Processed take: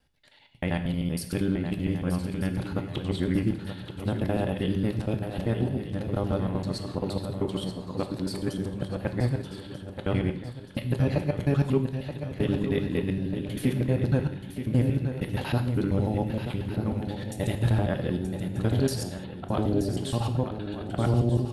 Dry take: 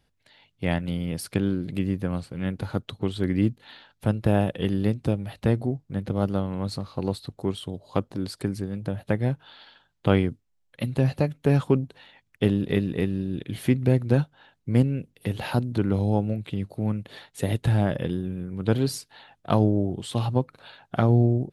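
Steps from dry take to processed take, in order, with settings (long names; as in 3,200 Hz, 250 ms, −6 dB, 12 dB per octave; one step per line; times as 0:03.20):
reversed piece by piece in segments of 78 ms
brickwall limiter −13 dBFS, peak gain reduction 7.5 dB
feedback echo with a long and a short gap by turns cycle 1,238 ms, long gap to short 3 to 1, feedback 38%, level −9 dB
reverb whose tail is shaped and stops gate 230 ms falling, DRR 6.5 dB
level −1.5 dB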